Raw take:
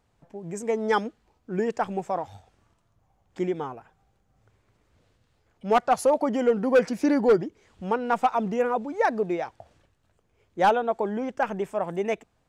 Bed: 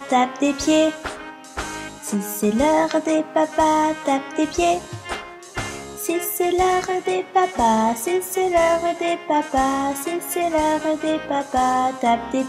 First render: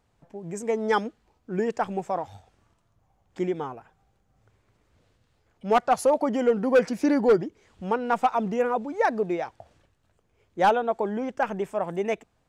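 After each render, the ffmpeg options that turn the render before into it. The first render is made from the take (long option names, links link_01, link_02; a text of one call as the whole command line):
ffmpeg -i in.wav -af anull out.wav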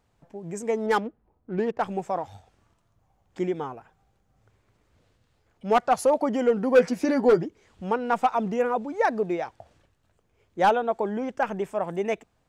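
ffmpeg -i in.wav -filter_complex "[0:a]asettb=1/sr,asplit=3[link_01][link_02][link_03];[link_01]atrim=end=0.864[link_04];[link_02]atrim=start=0.86:end=1.82,asetpts=PTS-STARTPTS,afade=type=in:duration=0.004:curve=qsin,afade=type=out:start_time=0.956:duration=0.004:curve=qsin,adynamicsmooth=sensitivity=4:basefreq=1100[link_05];[link_03]atrim=start=1.816[link_06];[link_04][link_05]acrossfade=duration=0.004:curve1=hsin:curve2=qsin[link_07];[link_07][link_06]acrossfade=duration=0.004:curve1=qsin:curve2=hsin,asettb=1/sr,asplit=3[link_08][link_09][link_10];[link_08]atrim=end=6.744[link_11];[link_09]atrim=start=6.74:end=7.45,asetpts=PTS-STARTPTS,afade=type=in:duration=0.004:curve=qsin,afade=type=out:start_time=0.706:duration=0.004:curve=qsin,asplit=2[link_12][link_13];[link_13]adelay=12,volume=-7dB[link_14];[link_12][link_14]amix=inputs=2:normalize=0,atrim=end_sample=31311[link_15];[link_10]atrim=start=7.446[link_16];[link_11][link_15]acrossfade=duration=0.004:curve1=hsin:curve2=qsin[link_17];[link_17][link_16]acrossfade=duration=0.004:curve1=qsin:curve2=hsin" out.wav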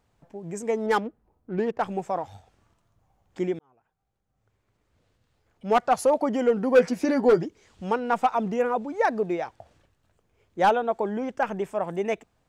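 ffmpeg -i in.wav -filter_complex "[0:a]asettb=1/sr,asplit=3[link_01][link_02][link_03];[link_01]atrim=end=7.374[link_04];[link_02]atrim=start=7.37:end=8,asetpts=PTS-STARTPTS,afade=type=in:duration=0.004:curve=qsin,afade=type=out:start_time=0.626:duration=0.004:curve=qsin,equalizer=frequency=5800:width=0.62:gain=5.5[link_05];[link_03]atrim=start=7.996[link_06];[link_04][link_05]acrossfade=duration=0.004:curve1=hsin:curve2=qsin[link_07];[link_07][link_06]acrossfade=duration=0.004:curve1=qsin:curve2=hsin,asplit=2[link_08][link_09];[link_08]atrim=end=3.59,asetpts=PTS-STARTPTS,afade=type=out:start_time=3.586:duration=0.004:curve=hsin[link_10];[link_09]atrim=start=3.59,asetpts=PTS-STARTPTS,afade=type=in:duration=2.23[link_11];[link_10][link_11]concat=n=2:v=0:a=1" out.wav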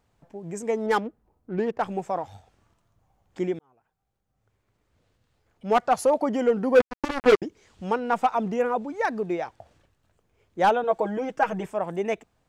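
ffmpeg -i in.wav -filter_complex "[0:a]asettb=1/sr,asplit=3[link_01][link_02][link_03];[link_01]atrim=end=6.804[link_04];[link_02]atrim=start=6.8:end=7.42,asetpts=PTS-STARTPTS,afade=type=in:duration=0.004:curve=qsin,afade=type=out:start_time=0.616:duration=0.004:curve=qsin,acrusher=bits=2:mix=0:aa=0.5[link_05];[link_03]atrim=start=7.416[link_06];[link_04][link_05]acrossfade=duration=0.004:curve1=hsin:curve2=qsin[link_07];[link_07][link_06]acrossfade=duration=0.004:curve1=qsin:curve2=hsin,asettb=1/sr,asplit=3[link_08][link_09][link_10];[link_08]atrim=end=8.904[link_11];[link_09]atrim=start=8.9:end=9.3,asetpts=PTS-STARTPTS,afade=type=in:duration=0.004:curve=qsin,afade=type=out:start_time=0.396:duration=0.004:curve=qsin,equalizer=frequency=600:width=1.5:gain=-6[link_12];[link_10]atrim=start=9.296[link_13];[link_11][link_12]acrossfade=duration=0.004:curve1=hsin:curve2=qsin[link_14];[link_14][link_13]acrossfade=duration=0.004:curve1=qsin:curve2=hsin,asettb=1/sr,asplit=3[link_15][link_16][link_17];[link_15]atrim=end=10.834[link_18];[link_16]atrim=start=10.83:end=11.66,asetpts=PTS-STARTPTS,afade=type=in:duration=0.004:curve=qsin,afade=type=out:start_time=0.826:duration=0.004:curve=qsin,aecho=1:1:6.3:0.83,atrim=end_sample=36603[link_19];[link_17]atrim=start=11.656[link_20];[link_18][link_19]acrossfade=duration=0.004:curve1=hsin:curve2=qsin[link_21];[link_21][link_20]acrossfade=duration=0.004:curve1=qsin:curve2=hsin" out.wav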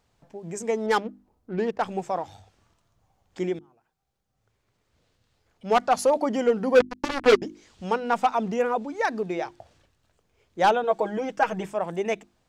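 ffmpeg -i in.wav -af "equalizer=frequency=4800:width=0.77:gain=5.5,bandreject=frequency=50:width_type=h:width=6,bandreject=frequency=100:width_type=h:width=6,bandreject=frequency=150:width_type=h:width=6,bandreject=frequency=200:width_type=h:width=6,bandreject=frequency=250:width_type=h:width=6,bandreject=frequency=300:width_type=h:width=6,bandreject=frequency=350:width_type=h:width=6" out.wav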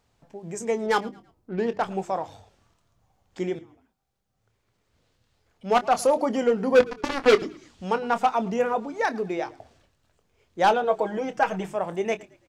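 ffmpeg -i in.wav -filter_complex "[0:a]asplit=2[link_01][link_02];[link_02]adelay=26,volume=-12.5dB[link_03];[link_01][link_03]amix=inputs=2:normalize=0,asplit=4[link_04][link_05][link_06][link_07];[link_05]adelay=110,afreqshift=-37,volume=-22dB[link_08];[link_06]adelay=220,afreqshift=-74,volume=-30.9dB[link_09];[link_07]adelay=330,afreqshift=-111,volume=-39.7dB[link_10];[link_04][link_08][link_09][link_10]amix=inputs=4:normalize=0" out.wav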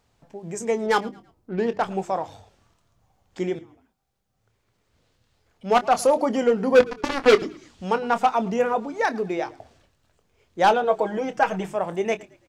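ffmpeg -i in.wav -af "volume=2dB" out.wav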